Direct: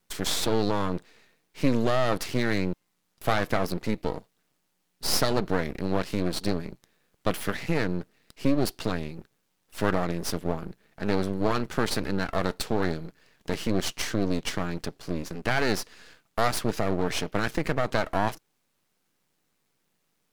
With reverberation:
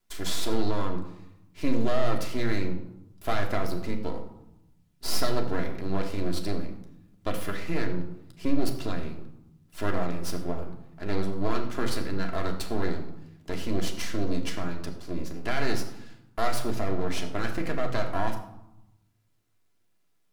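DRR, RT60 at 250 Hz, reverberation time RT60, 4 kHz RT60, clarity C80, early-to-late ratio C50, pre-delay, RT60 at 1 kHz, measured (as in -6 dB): 2.0 dB, 1.3 s, 0.85 s, 0.55 s, 11.0 dB, 8.5 dB, 3 ms, 0.90 s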